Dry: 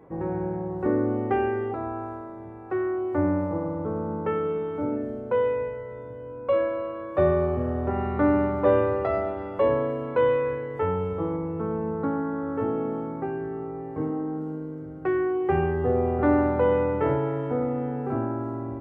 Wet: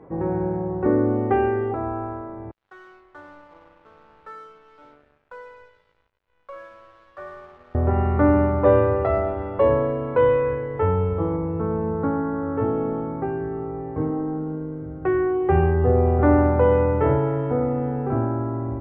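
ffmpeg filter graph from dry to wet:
-filter_complex "[0:a]asettb=1/sr,asplit=3[a][b][c];[a]atrim=end=2.514[d];[b]atrim=start=2.51:end=7.75,asetpts=PTS-STARTPTS,afade=t=in:d=0.004:c=qsin,afade=t=out:st=5.236:d=0.004:c=qsin,lowpass=f=1.5k:t=q:w=2.5,aderivative,aeval=exprs='sgn(val(0))*max(abs(val(0))-0.00178,0)':c=same[e];[c]atrim=start=7.746[f];[d][e]acrossfade=d=0.004:c1=hsin:c2=qsin[g];[g][f]acrossfade=d=0.004:c1=qsin:c2=hsin,lowpass=f=1.8k:p=1,asubboost=boost=2.5:cutoff=110,volume=5dB"

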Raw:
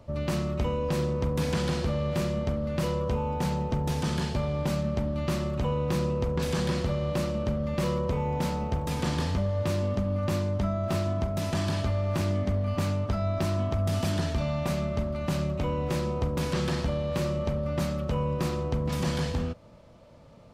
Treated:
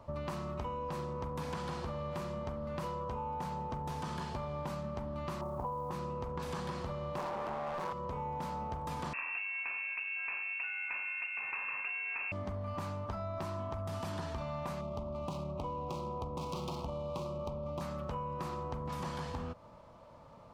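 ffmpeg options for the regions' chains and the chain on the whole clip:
-filter_complex "[0:a]asettb=1/sr,asplit=3[a][b][c];[a]atrim=end=5.414[d];[b]atrim=start=5.41:end=5.91,asetpts=PTS-STARTPTS,afade=t=in:d=0.004:c=qsin,afade=t=out:st=0.496:d=0.004:c=qsin,lowpass=f=870:t=q:w=2.2,acrusher=bits=8:mode=log:mix=0:aa=0.000001[e];[c]atrim=start=5.906[f];[d][e]acrossfade=d=0.004:c1=hsin:c2=qsin[g];[g][f]acrossfade=d=0.004:c1=qsin:c2=hsin,asettb=1/sr,asplit=3[h][i][j];[h]atrim=end=7.184[k];[i]atrim=start=7.18:end=7.93,asetpts=PTS-STARTPTS,afade=t=in:d=0.004:c=qsin,afade=t=out:st=0.746:d=0.004:c=qsin,highpass=f=75:w=0.5412,highpass=f=75:w=1.3066,aeval=exprs='max(val(0),0)':c=same,asplit=2[l][m];[m]highpass=f=720:p=1,volume=37dB,asoftclip=type=tanh:threshold=-17dB[n];[l][n]amix=inputs=2:normalize=0,lowpass=f=1.7k:p=1,volume=-6dB[o];[j]atrim=start=7.926[p];[k][o]acrossfade=d=0.004:c1=hsin:c2=qsin[q];[q][p]acrossfade=d=0.004:c1=qsin:c2=hsin,asettb=1/sr,asplit=3[r][s][t];[r]atrim=end=9.134[u];[s]atrim=start=9.13:end=12.32,asetpts=PTS-STARTPTS,afade=t=in:d=0.004:c=qsin,afade=t=out:st=3.186:d=0.004:c=qsin,equalizer=f=420:w=4:g=5,lowpass=f=2.4k:t=q:w=0.5098,lowpass=f=2.4k:t=q:w=0.6013,lowpass=f=2.4k:t=q:w=0.9,lowpass=f=2.4k:t=q:w=2.563,afreqshift=-2800[v];[t]atrim=start=12.316[w];[u][v]acrossfade=d=0.004:c1=hsin:c2=qsin[x];[x][w]acrossfade=d=0.004:c1=qsin:c2=hsin,asettb=1/sr,asplit=3[y][z][aa];[y]atrim=end=14.814[ab];[z]atrim=start=14.81:end=17.81,asetpts=PTS-STARTPTS,afade=t=in:d=0.004:c=qsin,afade=t=out:st=2.996:d=0.004:c=qsin,bass=f=250:g=-1,treble=f=4k:g=11,adynamicsmooth=sensitivity=6.5:basefreq=1.1k,asuperstop=centerf=1700:order=4:qfactor=1.2[ac];[aa]atrim=start=17.806[ad];[ab][ac]acrossfade=d=0.004:c1=hsin:c2=qsin[ae];[ae][ad]acrossfade=d=0.004:c1=qsin:c2=hsin,equalizer=f=1k:t=o:w=0.99:g=12.5,acompressor=threshold=-30dB:ratio=6,volume=-6dB"

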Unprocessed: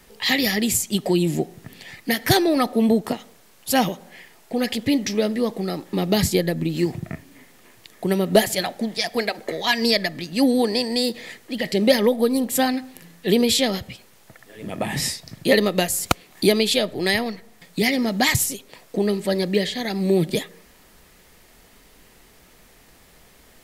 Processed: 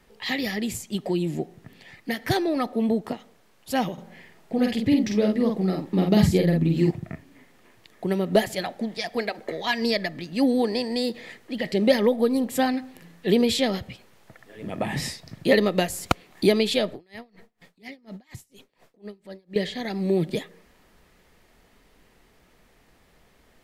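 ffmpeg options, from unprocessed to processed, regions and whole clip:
-filter_complex "[0:a]asettb=1/sr,asplit=3[a][b][c];[a]atrim=end=3.934[d];[b]atrim=start=3.93:end=6.91,asetpts=PTS-STARTPTS,afade=t=in:d=0.004:c=qsin,afade=t=out:st=2.976:d=0.004:c=qsin,equalizer=f=140:w=0.57:g=6.5,asplit=2[e][f];[f]adelay=48,volume=-3.5dB[g];[e][g]amix=inputs=2:normalize=0,atrim=end_sample=131418[h];[c]atrim=start=6.906[i];[d][h]acrossfade=d=0.004:c1=hsin:c2=qsin[j];[j][i]acrossfade=d=0.004:c1=qsin:c2=hsin,asettb=1/sr,asplit=3[k][l][m];[k]atrim=end=16.944[n];[l]atrim=start=16.94:end=19.56,asetpts=PTS-STARTPTS,afade=t=in:d=0.004:c=qsin,afade=t=out:st=2.616:d=0.004:c=qsin,acompressor=threshold=-29dB:ratio=10:attack=3.2:release=140:knee=1:detection=peak,aeval=exprs='val(0)*pow(10,-28*(0.5-0.5*cos(2*PI*4.2*n/s))/20)':c=same[o];[m]atrim=start=19.556[p];[n][o]acrossfade=d=0.004:c1=hsin:c2=qsin[q];[q][p]acrossfade=d=0.004:c1=qsin:c2=hsin,highshelf=f=4.7k:g=-10.5,dynaudnorm=f=570:g=17:m=11.5dB,volume=-5.5dB"

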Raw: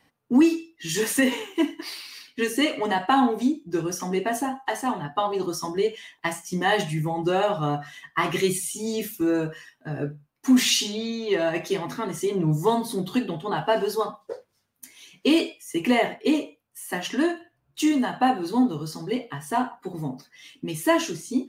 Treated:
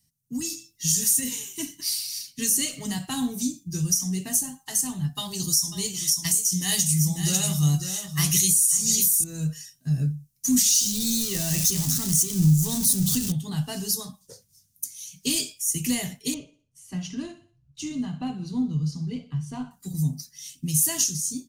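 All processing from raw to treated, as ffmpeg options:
-filter_complex "[0:a]asettb=1/sr,asplit=3[a][b][c];[a]atrim=end=5.154[d];[b]atrim=start=5.15:end=9.24,asetpts=PTS-STARTPTS,afade=t=in:d=0.004:c=qsin,afade=t=out:st=4.086:d=0.004:c=qsin,highshelf=f=2.4k:g=10,aecho=1:1:545:0.335,atrim=end_sample=180369[e];[c]atrim=start=9.236[f];[d][e]acrossfade=d=0.004:c1=hsin:c2=qsin[g];[g][f]acrossfade=d=0.004:c1=qsin:c2=hsin,asettb=1/sr,asplit=3[h][i][j];[h]atrim=end=10.704[k];[i]atrim=start=10.7:end=13.32,asetpts=PTS-STARTPTS,afade=t=in:d=0.004:c=qsin,afade=t=out:st=2.616:d=0.004:c=qsin,aeval=exprs='val(0)+0.5*0.0422*sgn(val(0))':c=same,bandreject=f=2.2k:w=19[l];[j]atrim=start=13.316[m];[k][l]acrossfade=d=0.004:c1=hsin:c2=qsin[n];[n][m]acrossfade=d=0.004:c1=qsin:c2=hsin,asettb=1/sr,asplit=3[o][p][q];[o]atrim=end=16.344[r];[p]atrim=start=16.34:end=19.71,asetpts=PTS-STARTPTS,afade=t=in:d=0.004:c=qsin,afade=t=out:st=3.366:d=0.004:c=qsin,lowpass=2.3k,bandreject=f=1.8k:w=5.8,aecho=1:1:61|122|183|244:0.15|0.0688|0.0317|0.0146,atrim=end_sample=148617[s];[q]atrim=start=19.706[t];[r][s]acrossfade=d=0.004:c1=hsin:c2=qsin[u];[u][t]acrossfade=d=0.004:c1=qsin:c2=hsin,firequalizer=gain_entry='entry(160,0);entry(320,-25);entry(840,-28);entry(5900,7)':delay=0.05:min_phase=1,alimiter=limit=-19.5dB:level=0:latency=1:release=321,dynaudnorm=f=140:g=7:m=11dB,volume=-1.5dB"

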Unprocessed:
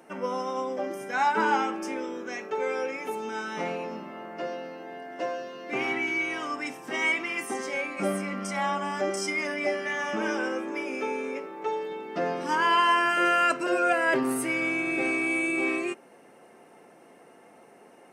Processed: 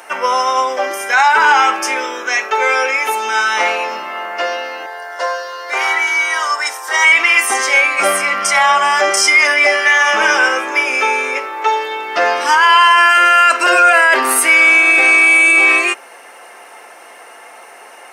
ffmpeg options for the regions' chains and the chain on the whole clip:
-filter_complex "[0:a]asettb=1/sr,asplit=3[a][b][c];[a]atrim=end=4.864[d];[b]atrim=start=4.86:end=7.05,asetpts=PTS-STARTPTS,afade=t=in:d=0.004:c=qsin,afade=t=out:st=2.186:d=0.004:c=qsin,highpass=560,equalizer=f=2.6k:w=2.5:g=-13.5,aecho=1:1:2.1:0.34,atrim=end_sample=96579[e];[c]atrim=start=7.046[f];[d][e]acrossfade=d=0.004:c1=hsin:c2=qsin[g];[g][f]acrossfade=d=0.004:c1=qsin:c2=hsin,highpass=970,bandreject=f=7.8k:w=28,alimiter=level_in=23dB:limit=-1dB:release=50:level=0:latency=1,volume=-1dB"

